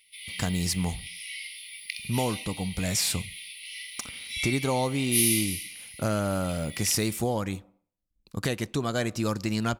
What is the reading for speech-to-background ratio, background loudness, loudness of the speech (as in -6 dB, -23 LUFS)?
3.5 dB, -32.5 LUFS, -29.0 LUFS